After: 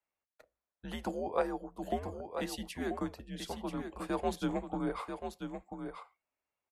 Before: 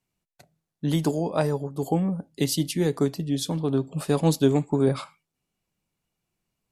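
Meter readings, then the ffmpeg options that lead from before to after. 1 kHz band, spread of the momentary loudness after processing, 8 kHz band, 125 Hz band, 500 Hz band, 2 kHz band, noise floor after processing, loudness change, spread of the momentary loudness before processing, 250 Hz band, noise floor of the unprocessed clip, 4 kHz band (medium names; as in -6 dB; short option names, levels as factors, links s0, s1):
-4.5 dB, 10 LU, -16.0 dB, -19.5 dB, -11.0 dB, -5.0 dB, under -85 dBFS, -13.0 dB, 6 LU, -13.0 dB, -84 dBFS, -12.5 dB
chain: -filter_complex "[0:a]highpass=110,acrossover=split=530 2300:gain=0.2 1 0.178[s0][s1][s2];[s0][s1][s2]amix=inputs=3:normalize=0,asplit=2[s3][s4];[s4]aecho=0:1:987:0.422[s5];[s3][s5]amix=inputs=2:normalize=0,afreqshift=-100,lowshelf=f=200:g=-6.5,volume=0.794"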